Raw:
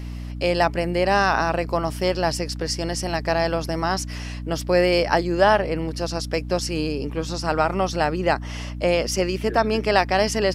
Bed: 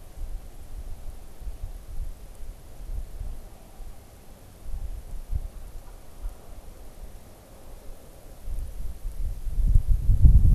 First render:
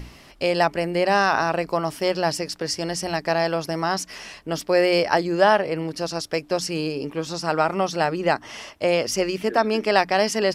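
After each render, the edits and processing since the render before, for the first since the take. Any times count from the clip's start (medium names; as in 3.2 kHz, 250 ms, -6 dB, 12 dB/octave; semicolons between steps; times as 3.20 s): hum notches 60/120/180/240/300 Hz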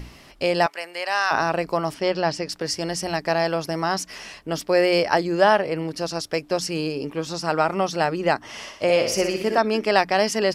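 0.66–1.31 s: high-pass 980 Hz; 1.94–2.49 s: low-pass 5.2 kHz; 8.50–9.58 s: flutter echo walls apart 10.5 m, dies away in 0.57 s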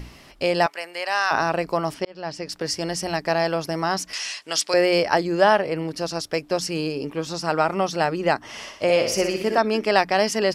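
2.05–2.61 s: fade in; 4.13–4.74 s: frequency weighting ITU-R 468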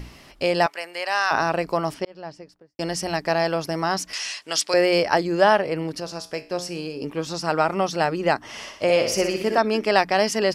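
1.85–2.79 s: studio fade out; 6.00–7.02 s: feedback comb 59 Hz, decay 0.4 s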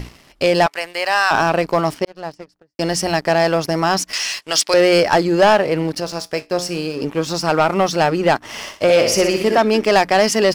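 waveshaping leveller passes 2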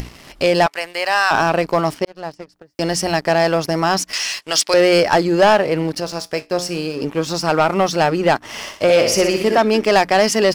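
upward compressor, threshold -25 dBFS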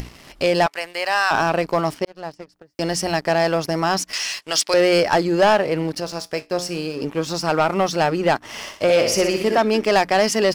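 trim -3 dB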